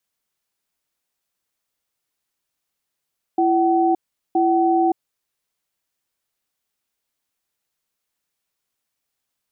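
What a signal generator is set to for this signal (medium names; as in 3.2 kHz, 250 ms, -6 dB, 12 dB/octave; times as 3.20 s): cadence 336 Hz, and 757 Hz, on 0.57 s, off 0.40 s, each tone -17 dBFS 1.88 s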